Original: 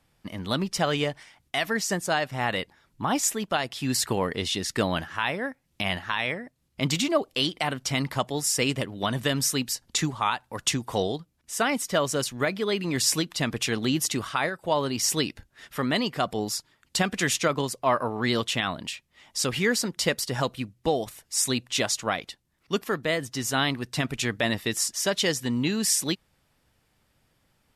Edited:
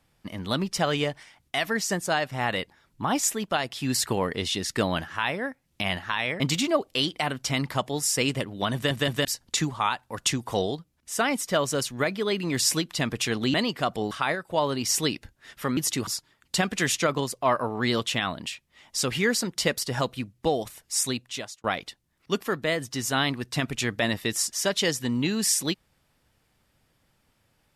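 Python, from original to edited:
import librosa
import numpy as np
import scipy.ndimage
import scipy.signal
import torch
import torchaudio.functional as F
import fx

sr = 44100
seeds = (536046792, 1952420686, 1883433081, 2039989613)

y = fx.edit(x, sr, fx.cut(start_s=6.4, length_s=0.41),
    fx.stutter_over(start_s=9.15, slice_s=0.17, count=3),
    fx.swap(start_s=13.95, length_s=0.3, other_s=15.91, other_length_s=0.57),
    fx.fade_out_span(start_s=21.35, length_s=0.7), tone=tone)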